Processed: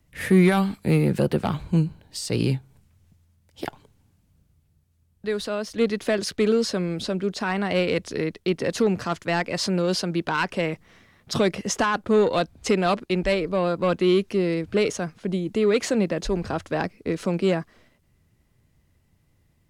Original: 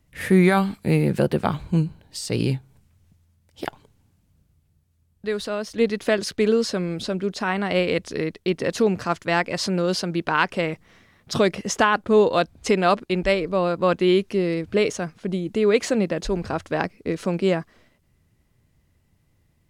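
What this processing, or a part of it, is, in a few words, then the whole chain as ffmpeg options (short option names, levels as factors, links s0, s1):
one-band saturation: -filter_complex "[0:a]acrossover=split=300|3200[s0][s1][s2];[s1]asoftclip=type=tanh:threshold=0.141[s3];[s0][s3][s2]amix=inputs=3:normalize=0"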